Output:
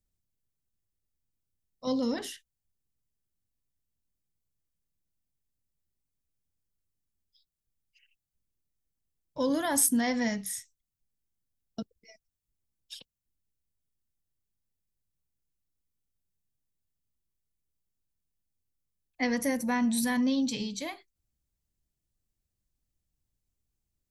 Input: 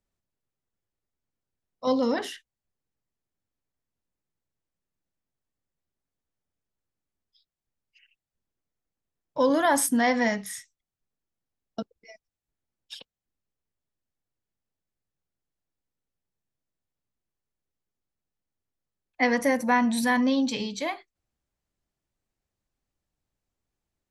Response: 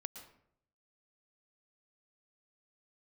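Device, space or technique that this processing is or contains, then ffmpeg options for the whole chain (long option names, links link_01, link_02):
smiley-face EQ: -af "lowshelf=frequency=160:gain=8,equalizer=frequency=1000:width_type=o:width=2.9:gain=-7.5,highshelf=frequency=6200:gain=8,volume=-3dB"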